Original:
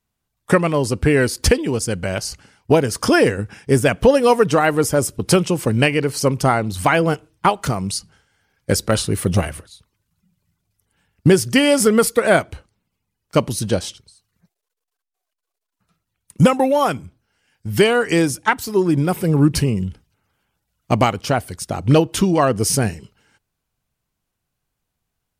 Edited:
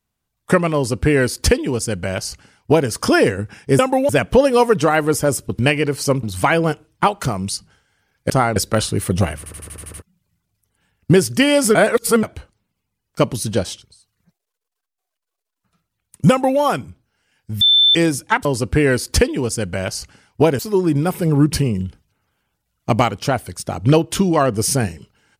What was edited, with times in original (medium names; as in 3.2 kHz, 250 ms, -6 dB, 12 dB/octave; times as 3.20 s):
0.75–2.89 s: copy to 18.61 s
5.29–5.75 s: delete
6.39–6.65 s: move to 8.72 s
9.54 s: stutter in place 0.08 s, 8 plays
11.91–12.39 s: reverse
16.46–16.76 s: copy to 3.79 s
17.77–18.11 s: bleep 3.54 kHz -9 dBFS